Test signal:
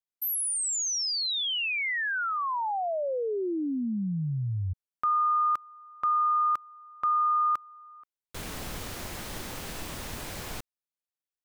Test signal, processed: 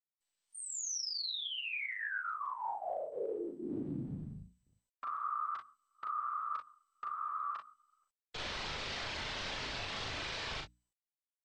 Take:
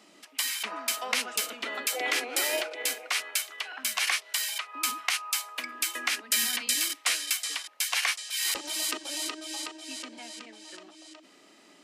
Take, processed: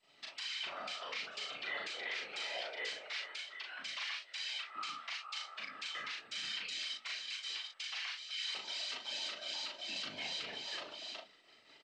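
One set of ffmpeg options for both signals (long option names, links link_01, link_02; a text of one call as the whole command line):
ffmpeg -i in.wav -filter_complex "[0:a]equalizer=frequency=97:width_type=o:width=2.2:gain=-15,aecho=1:1:4.6:0.79,afftfilt=real='hypot(re,im)*cos(2*PI*random(0))':imag='hypot(re,im)*sin(2*PI*random(1))':win_size=512:overlap=0.75,acrossover=split=360|1600[link_01][link_02][link_03];[link_01]acompressor=threshold=-49dB:ratio=4:attack=46:release=260:knee=2.83:detection=peak[link_04];[link_04][link_02][link_03]amix=inputs=3:normalize=0,highshelf=frequency=2700:gain=9.5,agate=range=-24dB:threshold=-55dB:ratio=16:release=199:detection=peak,lowpass=frequency=4400:width=0.5412,lowpass=frequency=4400:width=1.3066,bandreject=frequency=60:width_type=h:width=6,bandreject=frequency=120:width_type=h:width=6,bandreject=frequency=180:width_type=h:width=6,bandreject=frequency=240:width_type=h:width=6,bandreject=frequency=300:width_type=h:width=6,acompressor=threshold=-35dB:ratio=16:attack=0.72:release=733:knee=1:detection=rms,alimiter=level_in=13.5dB:limit=-24dB:level=0:latency=1:release=32,volume=-13.5dB,asplit=2[link_05][link_06];[link_06]aecho=0:1:38|58:0.668|0.211[link_07];[link_05][link_07]amix=inputs=2:normalize=0,volume=4.5dB" -ar 32000 -c:a mp2 -b:a 96k out.mp2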